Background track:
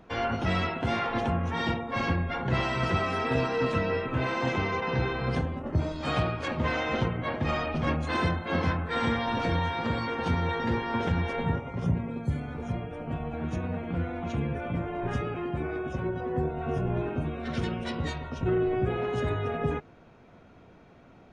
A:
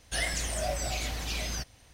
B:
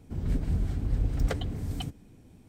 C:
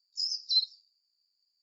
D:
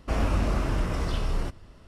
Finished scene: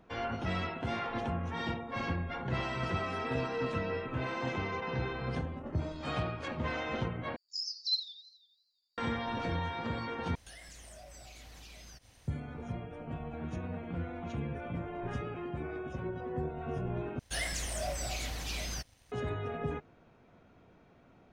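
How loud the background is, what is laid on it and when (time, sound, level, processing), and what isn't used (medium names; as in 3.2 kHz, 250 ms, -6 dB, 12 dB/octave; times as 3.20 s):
background track -7 dB
7.36 s: replace with C -5.5 dB + modulated delay 84 ms, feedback 60%, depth 167 cents, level -15 dB
10.35 s: replace with A -3 dB + compression, threshold -46 dBFS
17.19 s: replace with A -7.5 dB + waveshaping leveller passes 1
not used: B, D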